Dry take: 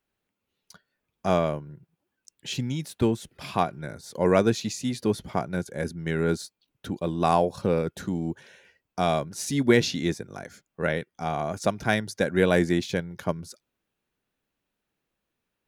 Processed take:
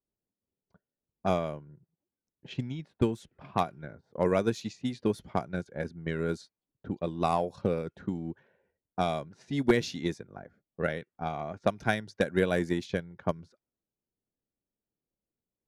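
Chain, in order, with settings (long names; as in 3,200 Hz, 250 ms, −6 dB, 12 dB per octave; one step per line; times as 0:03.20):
transient designer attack +7 dB, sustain −1 dB
wave folding −4 dBFS
low-pass that shuts in the quiet parts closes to 580 Hz, open at −18 dBFS
level −8 dB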